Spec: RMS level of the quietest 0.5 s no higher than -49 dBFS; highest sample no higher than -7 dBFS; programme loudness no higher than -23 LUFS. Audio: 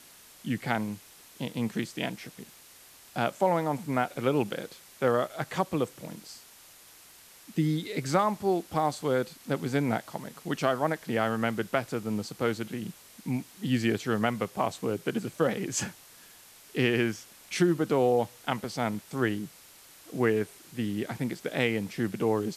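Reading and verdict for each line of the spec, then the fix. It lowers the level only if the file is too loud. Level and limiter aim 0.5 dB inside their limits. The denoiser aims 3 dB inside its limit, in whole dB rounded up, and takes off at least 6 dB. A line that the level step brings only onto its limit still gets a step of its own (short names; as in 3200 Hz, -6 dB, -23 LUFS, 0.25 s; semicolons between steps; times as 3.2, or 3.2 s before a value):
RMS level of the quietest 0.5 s -53 dBFS: OK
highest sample -10.0 dBFS: OK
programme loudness -30.0 LUFS: OK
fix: none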